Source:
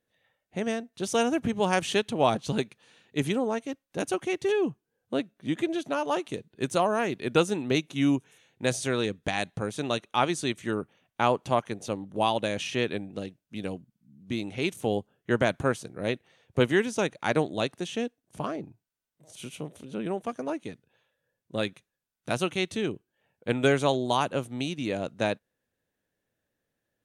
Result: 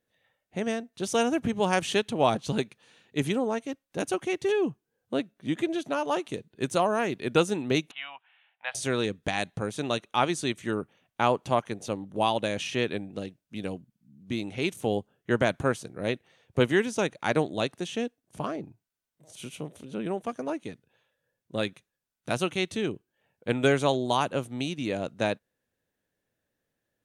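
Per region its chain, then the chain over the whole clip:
0:07.91–0:08.75: elliptic band-pass filter 740–3,100 Hz + de-essing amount 80%
whole clip: no processing

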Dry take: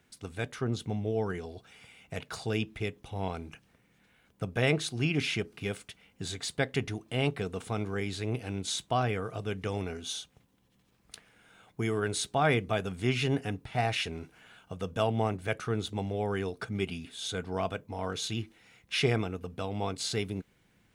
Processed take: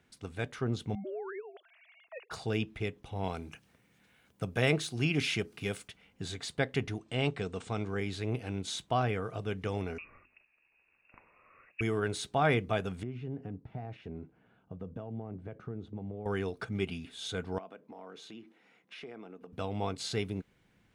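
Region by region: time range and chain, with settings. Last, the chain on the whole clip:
0:00.95–0:02.31: three sine waves on the formant tracks + low-shelf EQ 490 Hz −4 dB + downward compressor 5 to 1, threshold −35 dBFS
0:03.24–0:05.88: high-pass filter 54 Hz + high-shelf EQ 5,000 Hz +9.5 dB
0:06.99–0:07.88: elliptic low-pass filter 8,600 Hz + high-shelf EQ 5,200 Hz +6 dB
0:09.98–0:11.81: voice inversion scrambler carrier 2,700 Hz + mains-hum notches 50/100/150/200/250/300/350/400 Hz
0:13.03–0:16.26: downward compressor, threshold −32 dBFS + resonant band-pass 190 Hz, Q 0.57
0:17.58–0:19.53: high-pass filter 200 Hz 24 dB per octave + high-shelf EQ 2,600 Hz −11 dB + downward compressor 4 to 1, threshold −44 dBFS
whole clip: de-essing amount 60%; high-shelf EQ 6,000 Hz −7.5 dB; level −1 dB

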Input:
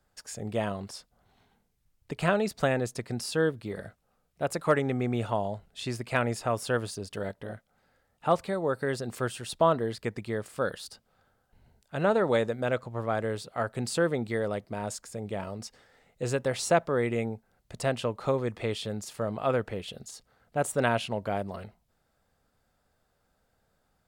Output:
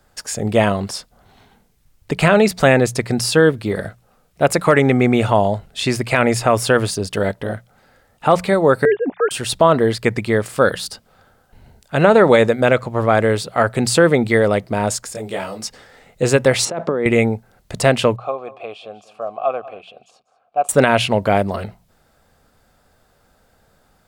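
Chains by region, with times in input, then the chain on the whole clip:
0:08.85–0:09.31: three sine waves on the formant tracks + low-pass filter 1,200 Hz 6 dB per octave
0:15.13–0:15.64: spectral tilt +2 dB per octave + micro pitch shift up and down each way 26 cents
0:16.65–0:17.06: parametric band 3,000 Hz −8 dB 2.9 octaves + compressor whose output falls as the input rises −34 dBFS + band-pass filter 180–4,200 Hz
0:18.16–0:20.69: formant filter a + single-tap delay 194 ms −18 dB
whole clip: mains-hum notches 60/120/180 Hz; dynamic equaliser 2,200 Hz, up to +5 dB, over −50 dBFS, Q 3.4; boost into a limiter +16 dB; level −1 dB

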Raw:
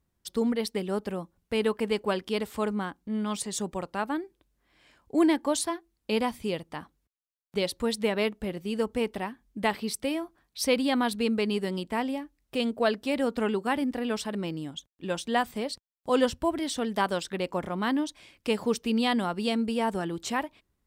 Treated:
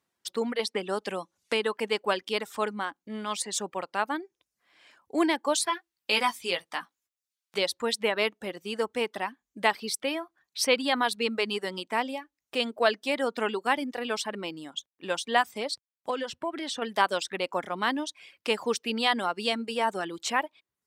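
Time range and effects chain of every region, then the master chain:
0:00.59–0:01.77: low-pass filter 11,000 Hz 24 dB per octave + multiband upward and downward compressor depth 70%
0:05.66–0:07.58: tilt shelving filter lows −5 dB, about 840 Hz + double-tracking delay 17 ms −5 dB
0:16.10–0:16.82: high-shelf EQ 6,300 Hz −11 dB + downward compressor, threshold −27 dBFS
whole clip: reverb reduction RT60 0.53 s; meter weighting curve A; level +3.5 dB

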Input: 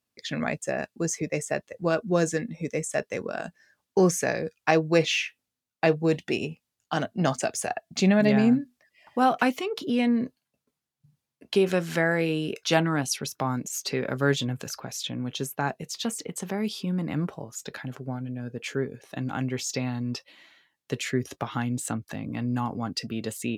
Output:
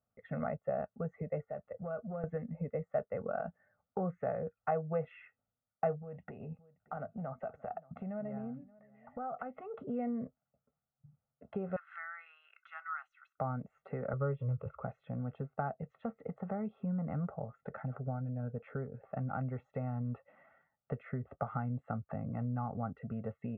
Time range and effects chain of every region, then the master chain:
0:01.44–0:02.24: downward compressor 3 to 1, threshold −38 dBFS + saturating transformer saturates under 360 Hz
0:06.01–0:09.74: downward compressor, threshold −36 dBFS + single-tap delay 576 ms −23.5 dB
0:11.76–0:13.38: Butterworth high-pass 1,200 Hz + high-shelf EQ 3,100 Hz +11 dB
0:14.13–0:14.84: low-shelf EQ 270 Hz +9 dB + phaser with its sweep stopped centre 1,100 Hz, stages 8
whole clip: downward compressor 2.5 to 1, threshold −34 dBFS; inverse Chebyshev low-pass filter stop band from 4,600 Hz, stop band 60 dB; comb filter 1.5 ms, depth 96%; level −3 dB

